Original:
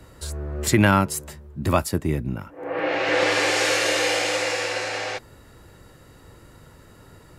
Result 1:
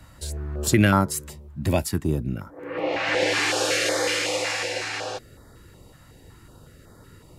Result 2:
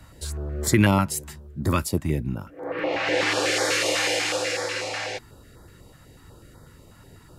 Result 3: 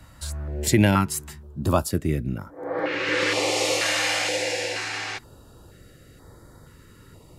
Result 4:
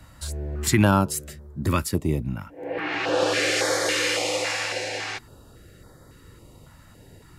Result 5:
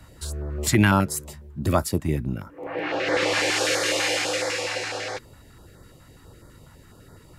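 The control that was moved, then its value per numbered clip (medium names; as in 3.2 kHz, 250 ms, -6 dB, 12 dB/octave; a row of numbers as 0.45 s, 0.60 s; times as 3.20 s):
step-sequenced notch, rate: 5.4 Hz, 8.1 Hz, 2.1 Hz, 3.6 Hz, 12 Hz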